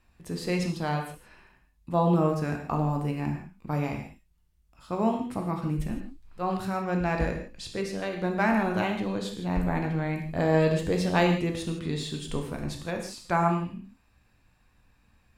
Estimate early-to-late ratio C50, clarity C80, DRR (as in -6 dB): 6.0 dB, 8.5 dB, 2.5 dB